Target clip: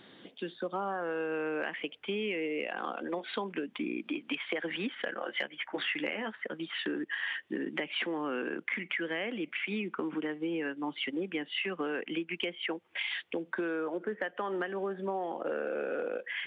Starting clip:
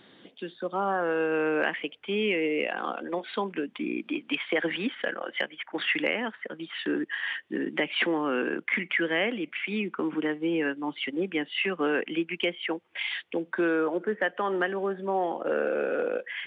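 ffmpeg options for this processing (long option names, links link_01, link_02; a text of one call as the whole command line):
ffmpeg -i in.wav -filter_complex "[0:a]acompressor=threshold=-31dB:ratio=6,asettb=1/sr,asplit=3[link_01][link_02][link_03];[link_01]atrim=end=5.154[link_04];[link_02]atrim=start=5.15:end=6.35,asetpts=PTS-STARTPTS,afade=type=in:duration=0.004:curve=qsin,afade=type=out:start_time=1.196:duration=0.004:curve=qsin,asplit=2[link_05][link_06];[link_06]adelay=14,volume=-7.5dB[link_07];[link_05][link_07]amix=inputs=2:normalize=0,atrim=end_sample=52920[link_08];[link_03]atrim=start=6.346[link_09];[link_04][link_08]acrossfade=duration=0.004:curve1=hsin:curve2=qsin[link_10];[link_10][link_09]acrossfade=duration=0.004:curve1=qsin:curve2=hsin" out.wav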